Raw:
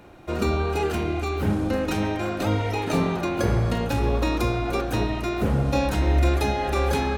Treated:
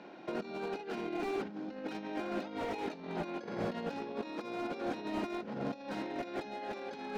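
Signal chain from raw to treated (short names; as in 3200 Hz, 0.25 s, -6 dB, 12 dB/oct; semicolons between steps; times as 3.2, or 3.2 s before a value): elliptic band-pass 200–5200 Hz, stop band 40 dB; notch 1200 Hz, Q 8.6; negative-ratio compressor -31 dBFS, ratio -0.5; slew limiter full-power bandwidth 34 Hz; gain -6.5 dB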